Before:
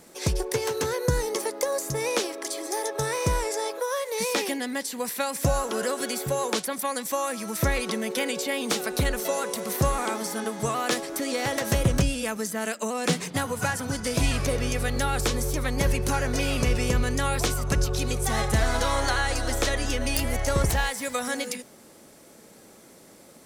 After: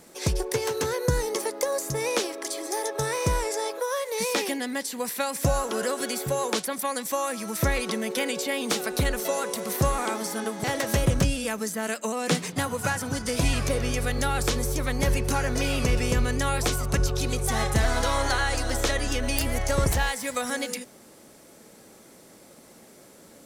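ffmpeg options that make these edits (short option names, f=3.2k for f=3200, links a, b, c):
-filter_complex "[0:a]asplit=2[a][b];[a]atrim=end=10.642[c];[b]atrim=start=11.418[d];[c][d]acrossfade=d=0.004:c1=hsin:c2=hsin"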